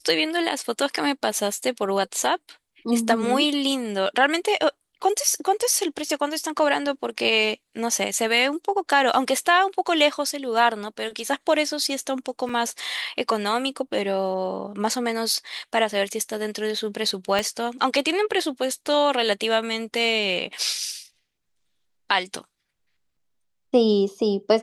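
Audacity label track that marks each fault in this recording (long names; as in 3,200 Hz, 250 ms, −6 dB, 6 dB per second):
12.490000	12.490000	drop-out 4.2 ms
17.390000	17.390000	click −10 dBFS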